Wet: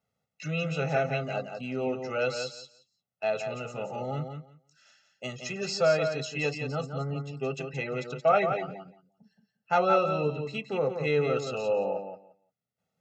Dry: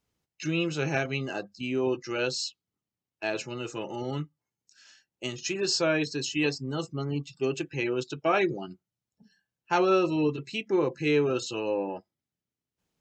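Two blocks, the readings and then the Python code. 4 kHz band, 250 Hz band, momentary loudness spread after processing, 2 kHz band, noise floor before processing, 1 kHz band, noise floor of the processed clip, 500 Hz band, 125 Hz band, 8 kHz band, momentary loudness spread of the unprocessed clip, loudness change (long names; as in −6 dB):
−5.5 dB, −6.5 dB, 13 LU, −1.5 dB, below −85 dBFS, +3.0 dB, −85 dBFS, +1.0 dB, +1.0 dB, −6.5 dB, 11 LU, −0.5 dB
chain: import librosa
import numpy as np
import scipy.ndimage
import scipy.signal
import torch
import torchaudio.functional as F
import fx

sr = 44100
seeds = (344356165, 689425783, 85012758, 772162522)

y = scipy.signal.sosfilt(scipy.signal.butter(2, 150.0, 'highpass', fs=sr, output='sos'), x)
y = fx.high_shelf(y, sr, hz=2300.0, db=-11.0)
y = y + 0.96 * np.pad(y, (int(1.5 * sr / 1000.0), 0))[:len(y)]
y = fx.echo_feedback(y, sr, ms=174, feedback_pct=16, wet_db=-7.0)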